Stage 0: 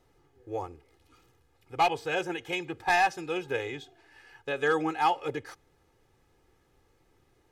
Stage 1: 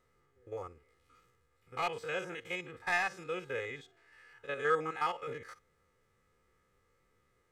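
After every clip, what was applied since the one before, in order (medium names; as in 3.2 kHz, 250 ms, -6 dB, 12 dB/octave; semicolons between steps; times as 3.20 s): spectrogram pixelated in time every 50 ms; graphic EQ with 31 bands 200 Hz +6 dB, 315 Hz -8 dB, 500 Hz +6 dB, 800 Hz -8 dB, 1.25 kHz +10 dB, 2 kHz +8 dB, 8 kHz +5 dB; trim -7 dB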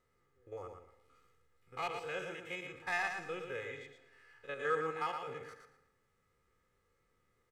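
feedback delay 115 ms, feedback 21%, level -6 dB; on a send at -17.5 dB: reverberation RT60 1.0 s, pre-delay 110 ms; on the sum: trim -4.5 dB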